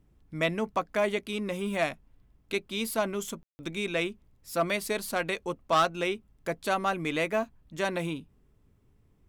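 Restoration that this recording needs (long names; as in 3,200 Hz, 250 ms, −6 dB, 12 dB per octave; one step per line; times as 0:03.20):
clipped peaks rebuilt −17 dBFS
ambience match 0:03.43–0:03.59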